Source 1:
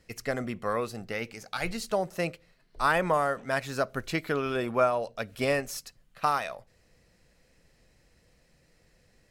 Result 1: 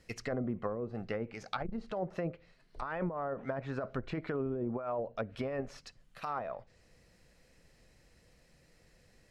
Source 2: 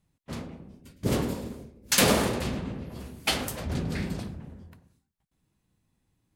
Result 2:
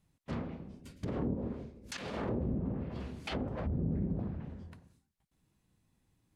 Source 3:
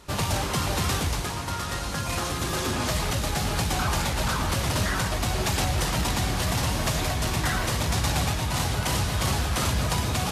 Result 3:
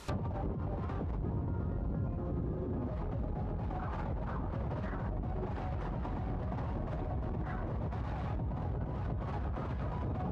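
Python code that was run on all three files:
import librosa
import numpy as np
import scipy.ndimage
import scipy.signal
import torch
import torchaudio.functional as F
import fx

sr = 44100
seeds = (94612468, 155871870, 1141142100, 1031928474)

y = fx.over_compress(x, sr, threshold_db=-30.0, ratio=-1.0)
y = fx.env_lowpass_down(y, sr, base_hz=390.0, full_db=-25.0)
y = fx.transformer_sat(y, sr, knee_hz=130.0)
y = y * librosa.db_to_amplitude(-3.0)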